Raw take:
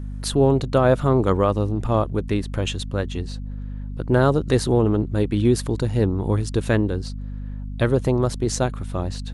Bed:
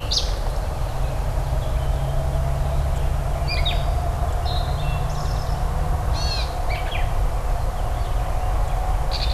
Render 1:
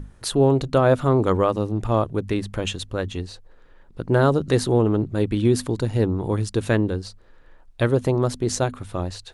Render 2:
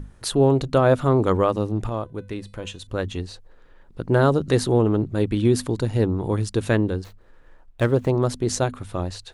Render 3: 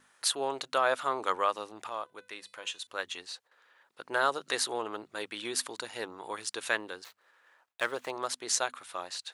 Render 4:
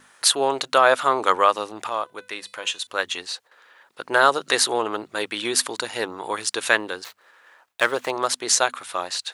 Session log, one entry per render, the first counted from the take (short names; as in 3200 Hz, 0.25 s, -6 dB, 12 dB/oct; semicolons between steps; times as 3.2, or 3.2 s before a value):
notches 50/100/150/200/250 Hz
1.89–2.87 resonator 500 Hz, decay 0.36 s; 7.04–8.11 median filter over 9 samples
HPF 1100 Hz 12 dB/oct; gate with hold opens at -58 dBFS
gain +11 dB; limiter -1 dBFS, peak gain reduction 3 dB